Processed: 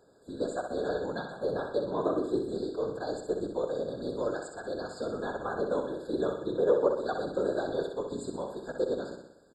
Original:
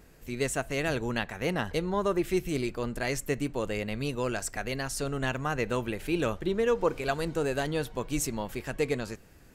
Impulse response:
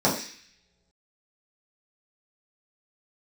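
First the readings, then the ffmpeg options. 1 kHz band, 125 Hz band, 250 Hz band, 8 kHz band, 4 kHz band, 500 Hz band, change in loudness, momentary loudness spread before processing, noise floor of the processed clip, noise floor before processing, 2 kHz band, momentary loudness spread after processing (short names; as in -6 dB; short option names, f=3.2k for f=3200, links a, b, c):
-2.5 dB, -10.5 dB, -3.5 dB, -15.0 dB, -8.5 dB, +1.0 dB, -1.5 dB, 5 LU, -58 dBFS, -55 dBFS, -9.5 dB, 8 LU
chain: -filter_complex "[0:a]lowpass=f=8.8k:w=0.5412,lowpass=f=8.8k:w=1.3066,acrossover=split=6800[a][b];[b]acompressor=threshold=-57dB:ratio=4:attack=1:release=60[c];[a][c]amix=inputs=2:normalize=0,highpass=200,equalizer=f=490:t=o:w=0.69:g=8,afftfilt=real='hypot(re,im)*cos(2*PI*random(0))':imag='hypot(re,im)*sin(2*PI*random(1))':win_size=512:overlap=0.75,aecho=1:1:63|126|189|252|315|378|441:0.501|0.271|0.146|0.0789|0.0426|0.023|0.0124,afftfilt=real='re*eq(mod(floor(b*sr/1024/1700),2),0)':imag='im*eq(mod(floor(b*sr/1024/1700),2),0)':win_size=1024:overlap=0.75"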